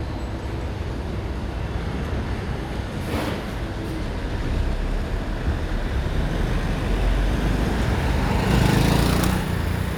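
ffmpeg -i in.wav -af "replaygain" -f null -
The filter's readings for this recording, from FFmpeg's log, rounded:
track_gain = +5.6 dB
track_peak = 0.373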